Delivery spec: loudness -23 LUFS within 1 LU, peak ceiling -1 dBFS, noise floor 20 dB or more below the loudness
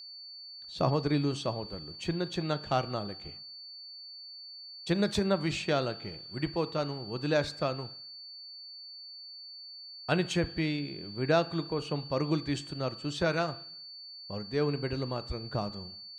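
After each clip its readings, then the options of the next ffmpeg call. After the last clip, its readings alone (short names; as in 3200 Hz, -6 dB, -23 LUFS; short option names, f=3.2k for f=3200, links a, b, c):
steady tone 4500 Hz; tone level -44 dBFS; loudness -32.0 LUFS; peak -13.0 dBFS; loudness target -23.0 LUFS
-> -af "bandreject=f=4.5k:w=30"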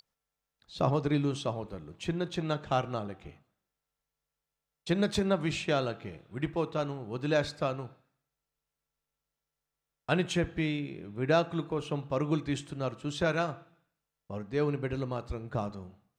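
steady tone none; loudness -32.0 LUFS; peak -13.0 dBFS; loudness target -23.0 LUFS
-> -af "volume=9dB"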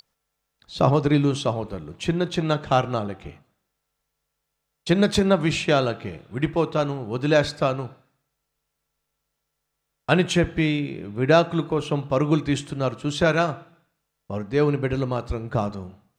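loudness -23.0 LUFS; peak -4.0 dBFS; noise floor -79 dBFS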